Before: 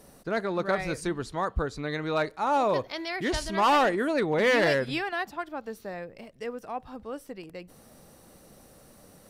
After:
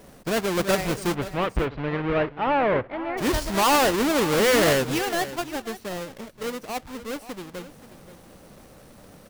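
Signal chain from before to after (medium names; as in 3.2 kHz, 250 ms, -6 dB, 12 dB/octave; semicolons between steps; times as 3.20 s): square wave that keeps the level; 1.14–3.17 s: low-pass 3.4 kHz -> 2 kHz 24 dB/octave; delay 529 ms -15 dB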